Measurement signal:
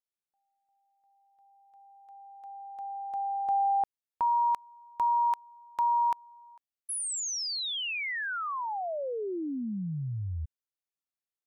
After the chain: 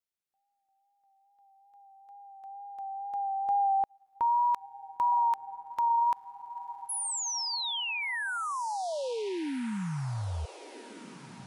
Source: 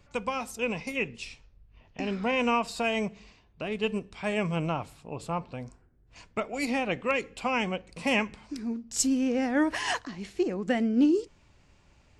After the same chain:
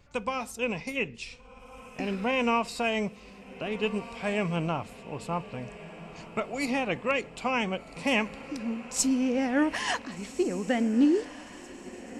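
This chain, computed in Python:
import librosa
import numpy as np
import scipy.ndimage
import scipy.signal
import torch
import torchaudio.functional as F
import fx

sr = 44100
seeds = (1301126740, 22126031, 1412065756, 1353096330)

y = fx.wow_flutter(x, sr, seeds[0], rate_hz=2.1, depth_cents=29.0)
y = fx.echo_diffused(y, sr, ms=1522, feedback_pct=49, wet_db=-15.0)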